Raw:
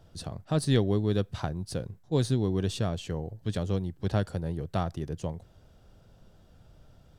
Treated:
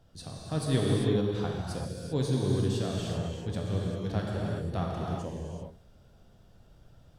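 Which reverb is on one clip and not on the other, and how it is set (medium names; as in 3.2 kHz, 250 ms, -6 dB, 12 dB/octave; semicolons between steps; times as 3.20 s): gated-style reverb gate 420 ms flat, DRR -3 dB; trim -5.5 dB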